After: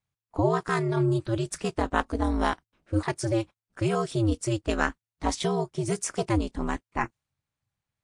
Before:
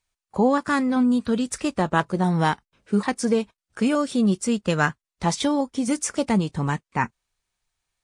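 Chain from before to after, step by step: ring modulator 110 Hz; tape noise reduction on one side only decoder only; trim -1.5 dB

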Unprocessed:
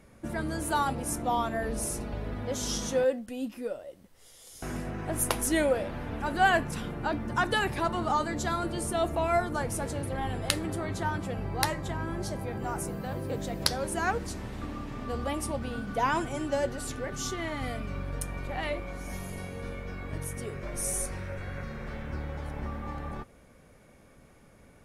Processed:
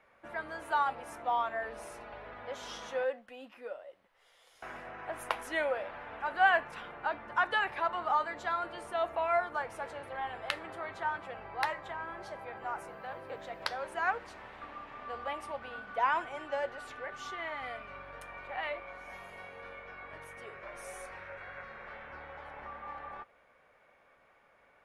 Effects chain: three-band isolator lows -23 dB, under 580 Hz, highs -22 dB, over 3.1 kHz

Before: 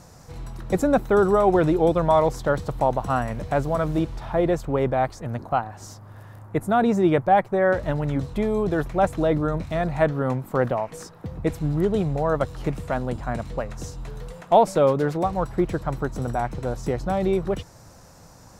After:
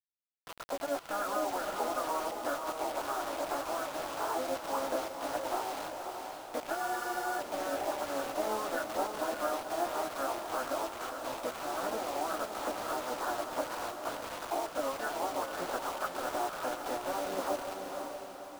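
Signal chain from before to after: Chebyshev band-pass 570–1400 Hz, order 3; gate -50 dBFS, range -48 dB; tilt EQ +3.5 dB/octave; level rider gain up to 14 dB; peak limiter -11 dBFS, peak gain reduction 10 dB; compression 12:1, threshold -29 dBFS, peak gain reduction 15 dB; saturation -21.5 dBFS, distortion -22 dB; chorus voices 4, 0.63 Hz, delay 18 ms, depth 1.9 ms; harmony voices -12 st -8 dB, +3 st -9 dB; bit crusher 7-bit; on a send: echo that smears into a reverb 538 ms, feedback 48%, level -5 dB; on the sum: spectral freeze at 6.79 s, 0.60 s

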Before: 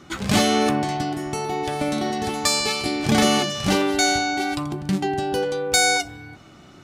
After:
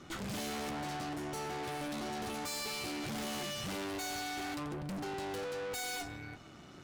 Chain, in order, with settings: valve stage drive 36 dB, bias 0.75; trim -2 dB

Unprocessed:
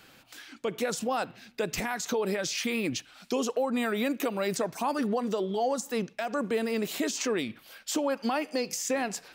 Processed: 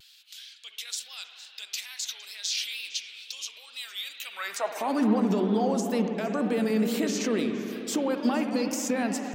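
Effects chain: peak limiter -22 dBFS, peak gain reduction 3.5 dB; high-pass sweep 3.6 kHz -> 190 Hz, 4.17–5.03 s; on a send: repeats whose band climbs or falls 115 ms, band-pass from 330 Hz, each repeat 1.4 oct, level -9.5 dB; on the sum: spring tank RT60 3.9 s, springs 59 ms, chirp 75 ms, DRR 5.5 dB; vibrato 2.2 Hz 82 cents

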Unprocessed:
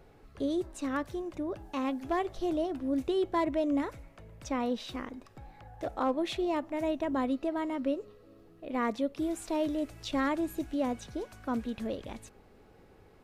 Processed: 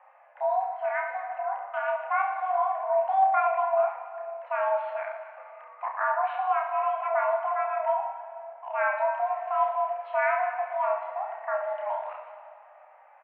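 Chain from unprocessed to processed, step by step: 3.53–4.43 s: touch-sensitive flanger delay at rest 2 ms, full sweep at -26.5 dBFS; mistuned SSB +390 Hz 180–2000 Hz; reverse bouncing-ball echo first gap 30 ms, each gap 1.3×, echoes 5; on a send at -8 dB: reverberation RT60 2.4 s, pre-delay 37 ms; on the sum: trim +2 dB

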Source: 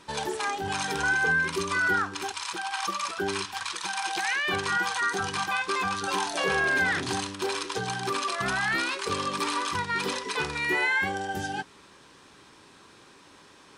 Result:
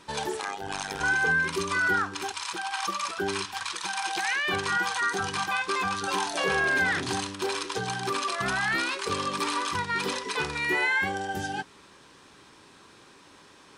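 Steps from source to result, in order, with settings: 0.40–1.01 s: AM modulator 98 Hz, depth 90%

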